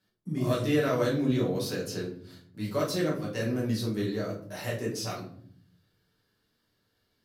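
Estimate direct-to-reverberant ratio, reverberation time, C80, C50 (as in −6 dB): −5.5 dB, 0.60 s, 11.5 dB, 7.0 dB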